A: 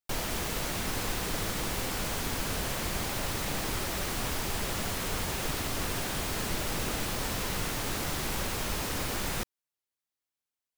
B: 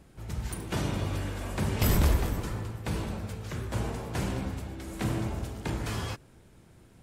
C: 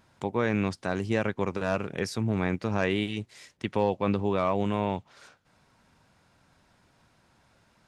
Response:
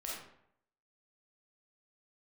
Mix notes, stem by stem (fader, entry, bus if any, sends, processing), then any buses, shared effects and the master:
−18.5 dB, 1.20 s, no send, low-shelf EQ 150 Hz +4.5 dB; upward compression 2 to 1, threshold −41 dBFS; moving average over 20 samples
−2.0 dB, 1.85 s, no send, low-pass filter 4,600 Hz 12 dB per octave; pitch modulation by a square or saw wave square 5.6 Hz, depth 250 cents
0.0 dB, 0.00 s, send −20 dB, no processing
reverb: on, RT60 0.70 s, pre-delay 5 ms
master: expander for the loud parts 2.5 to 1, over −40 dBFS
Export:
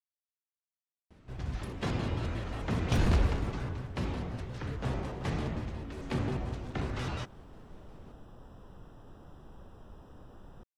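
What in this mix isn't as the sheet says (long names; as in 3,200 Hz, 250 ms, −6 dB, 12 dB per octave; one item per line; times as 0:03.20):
stem B: entry 1.85 s → 1.10 s
stem C: muted
reverb: off
master: missing expander for the loud parts 2.5 to 1, over −40 dBFS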